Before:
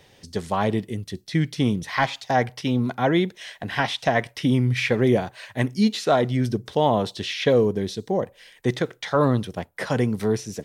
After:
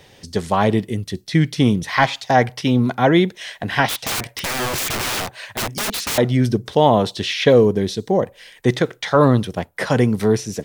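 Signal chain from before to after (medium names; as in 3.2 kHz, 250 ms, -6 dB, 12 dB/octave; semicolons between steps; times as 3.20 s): 3.88–6.18 s: integer overflow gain 24 dB; trim +6 dB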